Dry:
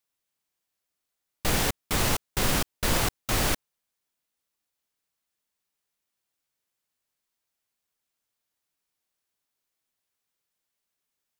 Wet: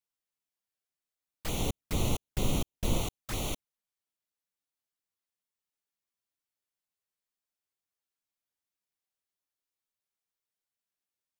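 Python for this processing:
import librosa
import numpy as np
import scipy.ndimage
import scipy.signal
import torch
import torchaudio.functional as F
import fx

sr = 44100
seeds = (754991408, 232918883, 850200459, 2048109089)

y = fx.low_shelf(x, sr, hz=490.0, db=6.5, at=(1.59, 3.02))
y = fx.env_flanger(y, sr, rest_ms=10.3, full_db=-22.5)
y = F.gain(torch.from_numpy(y), -7.0).numpy()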